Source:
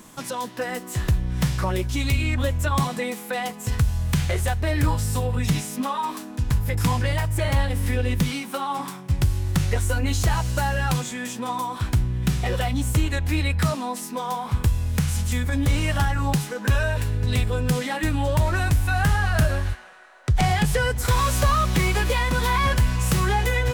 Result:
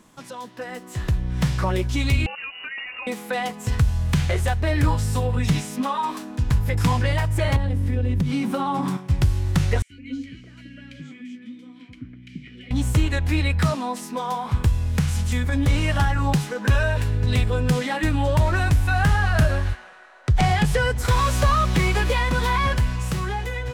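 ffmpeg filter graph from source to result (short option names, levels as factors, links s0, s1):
-filter_complex "[0:a]asettb=1/sr,asplit=3[s0][s1][s2];[s0]atrim=end=2.264[s3];[s1]atrim=start=2.26:end=3.07,asetpts=PTS-STARTPTS,afade=t=in:d=0.004:c=qsin,afade=t=out:st=0.806:d=0.004:c=qsin,highpass=240,lowpass=f=2600:t=q:w=0.5098,lowpass=f=2600:t=q:w=0.6013,lowpass=f=2600:t=q:w=0.9,lowpass=f=2600:t=q:w=2.563,afreqshift=-3000,acompressor=threshold=0.02:ratio=3:attack=3.2:release=140:knee=1:detection=peak[s4];[s2]atrim=start=3.066[s5];[s3][s4]acrossfade=d=0.004:c1=hsin:c2=qsin[s6];[s6][s5]acrossfade=d=0.004:c1=qsin:c2=hsin,asettb=1/sr,asplit=3[s7][s8][s9];[s7]atrim=end=7.564[s10];[s8]atrim=start=7.56:end=8.97,asetpts=PTS-STARTPTS,afade=t=in:d=0.004:c=qsin,afade=t=out:st=1.406:d=0.004:c=qsin,equalizer=f=140:w=0.32:g=13.5,acompressor=threshold=0.0891:ratio=6:attack=3.2:release=140:knee=1:detection=peak[s11];[s9]atrim=start=8.966[s12];[s10][s11]acrossfade=d=0.004:c1=hsin:c2=qsin[s13];[s13][s12]acrossfade=d=0.004:c1=qsin:c2=hsin,asettb=1/sr,asplit=3[s14][s15][s16];[s14]atrim=end=9.824[s17];[s15]atrim=start=9.82:end=12.71,asetpts=PTS-STARTPTS,afade=t=in:d=0.004:c=qsin,afade=t=out:st=2.886:d=0.004:c=qsin,asplit=3[s18][s19][s20];[s18]bandpass=f=270:t=q:w=8,volume=1[s21];[s19]bandpass=f=2290:t=q:w=8,volume=0.501[s22];[s20]bandpass=f=3010:t=q:w=8,volume=0.355[s23];[s21][s22][s23]amix=inputs=3:normalize=0,equalizer=f=3500:w=5.3:g=-7.5,acrossover=split=390|1600[s24][s25][s26];[s24]adelay=80[s27];[s25]adelay=200[s28];[s27][s28][s26]amix=inputs=3:normalize=0,atrim=end_sample=127449[s29];[s16]atrim=start=12.706[s30];[s17][s29]acrossfade=d=0.004:c1=hsin:c2=qsin[s31];[s31][s30]acrossfade=d=0.004:c1=qsin:c2=hsin,highshelf=f=9100:g=-11,dynaudnorm=f=170:g=13:m=3.16,volume=0.473"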